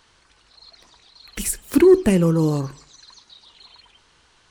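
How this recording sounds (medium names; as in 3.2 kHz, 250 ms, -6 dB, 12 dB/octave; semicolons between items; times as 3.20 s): noise floor -58 dBFS; spectral tilt -6.0 dB/octave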